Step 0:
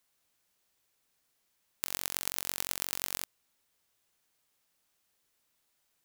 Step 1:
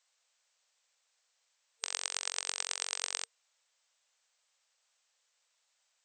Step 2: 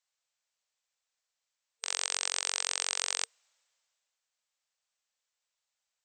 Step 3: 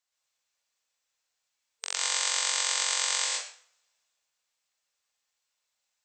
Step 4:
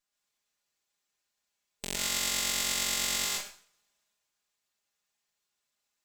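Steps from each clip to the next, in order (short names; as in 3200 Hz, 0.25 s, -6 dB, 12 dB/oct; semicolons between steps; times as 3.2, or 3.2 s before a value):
FFT band-pass 460–8300 Hz; tilt +1.5 dB/oct
limiter -14.5 dBFS, peak gain reduction 5.5 dB; three-band expander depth 40%; gain +6.5 dB
plate-style reverb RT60 0.52 s, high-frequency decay 0.9×, pre-delay 0.1 s, DRR -3 dB
minimum comb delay 4.9 ms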